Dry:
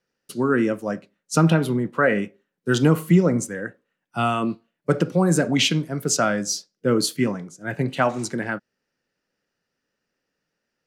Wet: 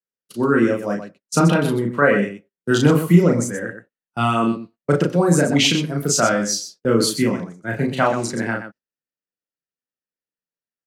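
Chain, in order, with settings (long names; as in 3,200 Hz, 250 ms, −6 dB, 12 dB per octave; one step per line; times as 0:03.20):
noise gate −37 dBFS, range −25 dB
on a send: loudspeakers that aren't time-aligned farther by 12 metres −2 dB, 43 metres −9 dB
on the sum: level +1 dB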